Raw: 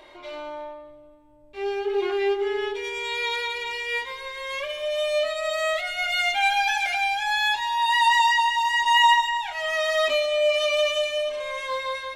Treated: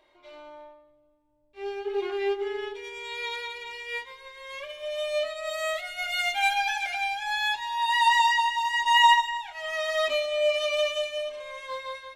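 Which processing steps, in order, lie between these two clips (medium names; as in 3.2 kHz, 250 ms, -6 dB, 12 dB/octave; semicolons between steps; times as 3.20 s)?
5.47–6.54 s: treble shelf 9.9 kHz +10.5 dB; upward expansion 1.5:1, over -44 dBFS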